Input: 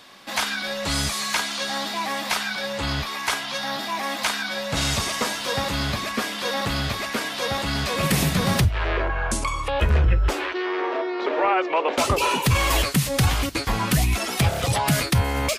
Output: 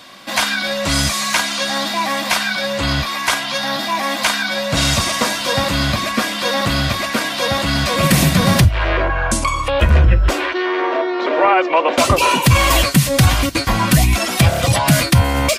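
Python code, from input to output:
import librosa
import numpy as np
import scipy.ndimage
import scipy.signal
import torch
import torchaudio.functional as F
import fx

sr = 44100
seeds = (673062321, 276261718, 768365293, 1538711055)

y = fx.notch_comb(x, sr, f0_hz=430.0)
y = y * 10.0 ** (8.5 / 20.0)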